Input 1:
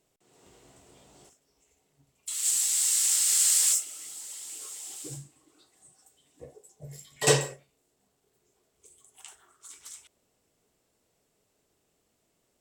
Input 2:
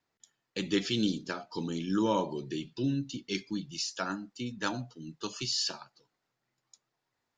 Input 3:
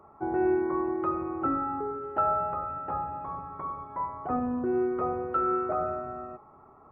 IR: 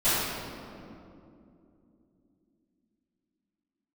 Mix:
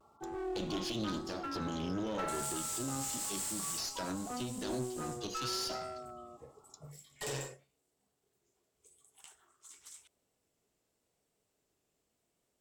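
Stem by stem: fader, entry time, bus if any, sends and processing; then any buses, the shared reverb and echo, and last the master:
−7.5 dB, 0.00 s, bus A, no send, no processing
+2.5 dB, 0.00 s, bus A, no send, flat-topped bell 1,400 Hz −10 dB; hum removal 229.4 Hz, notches 33
−10.5 dB, 0.00 s, no bus, no send, gate on every frequency bin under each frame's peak −20 dB strong
bus A: 0.0 dB, brickwall limiter −26.5 dBFS, peak gain reduction 11.5 dB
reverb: not used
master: pitch vibrato 0.91 Hz 50 cents; asymmetric clip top −41 dBFS

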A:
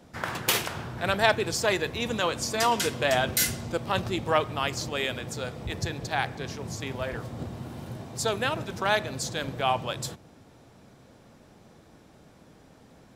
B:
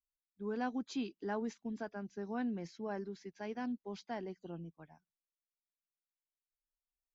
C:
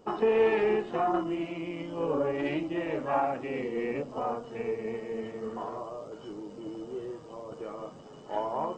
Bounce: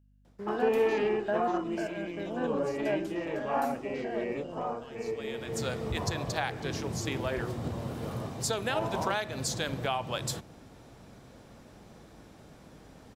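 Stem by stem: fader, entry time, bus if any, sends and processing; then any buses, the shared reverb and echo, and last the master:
+1.5 dB, 0.25 s, no send, downward compressor 6 to 1, threshold −29 dBFS, peak gain reduction 13 dB; automatic ducking −21 dB, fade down 0.25 s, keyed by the second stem
−0.5 dB, 0.00 s, no send, spectrum averaged block by block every 100 ms; hollow resonant body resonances 600/1,600/2,800 Hz, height 17 dB, ringing for 25 ms
−2.5 dB, 0.40 s, no send, no processing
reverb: not used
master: mains hum 50 Hz, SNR 30 dB

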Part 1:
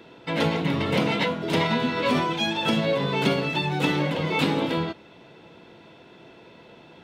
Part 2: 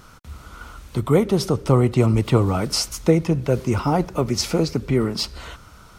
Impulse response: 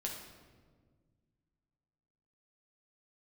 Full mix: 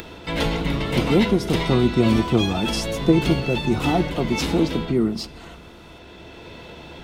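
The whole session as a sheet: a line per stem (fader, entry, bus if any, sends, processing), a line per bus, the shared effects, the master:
−1.0 dB, 0.00 s, send −10.5 dB, sub-octave generator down 2 octaves, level −1 dB; upward compression, threshold −32 dBFS; high-shelf EQ 4,700 Hz +9 dB; automatic ducking −7 dB, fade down 1.95 s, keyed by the second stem
−7.5 dB, 0.00 s, no send, hollow resonant body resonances 220/330/690 Hz, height 11 dB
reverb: on, RT60 1.6 s, pre-delay 7 ms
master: no processing

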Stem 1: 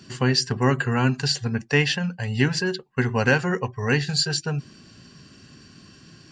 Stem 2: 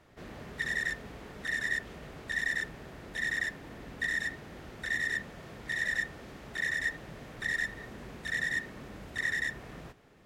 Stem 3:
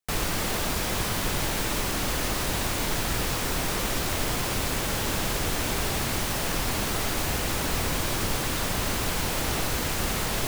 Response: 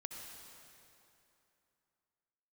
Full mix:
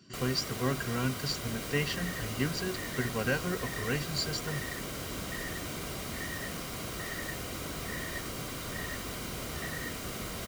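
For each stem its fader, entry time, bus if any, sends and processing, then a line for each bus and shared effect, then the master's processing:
−10.0 dB, 0.00 s, no send, no processing
−5.5 dB, 1.30 s, no send, spectral tilt −3.5 dB per octave
−10.0 dB, 0.05 s, no send, no processing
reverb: not used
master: notch comb filter 860 Hz

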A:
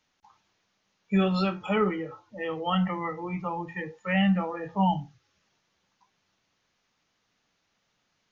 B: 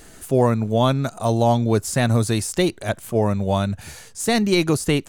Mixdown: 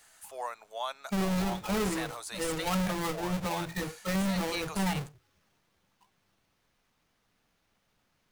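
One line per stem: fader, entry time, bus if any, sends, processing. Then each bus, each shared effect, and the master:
−4.5 dB, 0.00 s, no send, each half-wave held at its own peak; low-shelf EQ 62 Hz +11.5 dB
−11.0 dB, 0.00 s, no send, high-pass filter 730 Hz 24 dB per octave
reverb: not used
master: brickwall limiter −23 dBFS, peak gain reduction 10 dB

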